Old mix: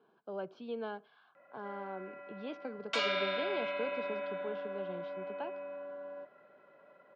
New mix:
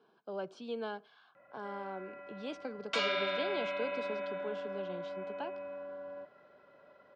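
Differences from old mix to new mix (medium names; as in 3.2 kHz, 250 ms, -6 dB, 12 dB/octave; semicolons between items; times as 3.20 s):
speech: remove distance through air 230 m; background: remove high-pass 210 Hz 12 dB/octave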